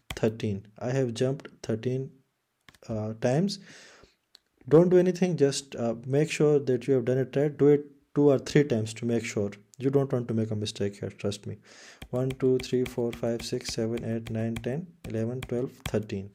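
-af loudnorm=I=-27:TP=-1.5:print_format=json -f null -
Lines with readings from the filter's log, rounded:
"input_i" : "-28.2",
"input_tp" : "-7.9",
"input_lra" : "7.2",
"input_thresh" : "-38.7",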